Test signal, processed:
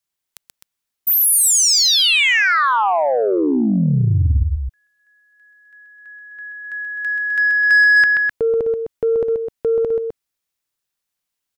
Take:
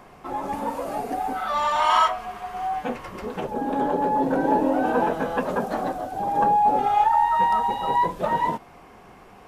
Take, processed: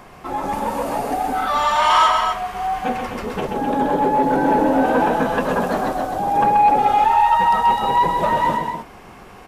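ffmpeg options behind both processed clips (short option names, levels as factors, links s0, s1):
-af "equalizer=f=470:w=0.38:g=-3.5,aecho=1:1:131.2|256.6:0.501|0.398,asoftclip=type=tanh:threshold=0.188,volume=2.37"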